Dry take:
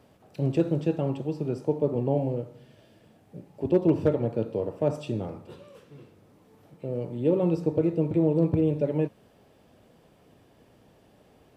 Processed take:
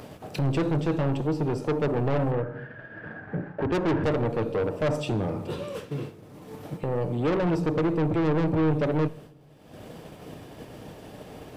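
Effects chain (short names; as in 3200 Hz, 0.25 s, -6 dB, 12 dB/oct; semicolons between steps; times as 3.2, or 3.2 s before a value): expander -45 dBFS; upward compressor, threshold -29 dBFS; 2.31–4.04 synth low-pass 1600 Hz, resonance Q 16; soft clip -30 dBFS, distortion -5 dB; shoebox room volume 3900 m³, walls furnished, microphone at 0.47 m; gain +8 dB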